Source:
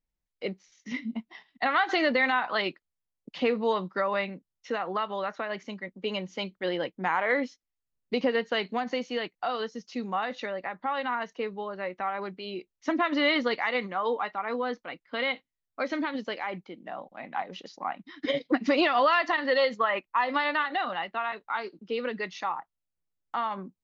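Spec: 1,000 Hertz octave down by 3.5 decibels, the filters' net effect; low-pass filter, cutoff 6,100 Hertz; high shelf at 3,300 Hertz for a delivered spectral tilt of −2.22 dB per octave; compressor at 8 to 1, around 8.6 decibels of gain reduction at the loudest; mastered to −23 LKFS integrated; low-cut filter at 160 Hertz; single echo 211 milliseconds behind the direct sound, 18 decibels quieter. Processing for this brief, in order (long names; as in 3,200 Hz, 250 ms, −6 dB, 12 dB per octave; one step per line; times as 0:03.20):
high-pass filter 160 Hz
low-pass filter 6,100 Hz
parametric band 1,000 Hz −4 dB
high-shelf EQ 3,300 Hz −5.5 dB
downward compressor 8 to 1, threshold −29 dBFS
single-tap delay 211 ms −18 dB
level +12.5 dB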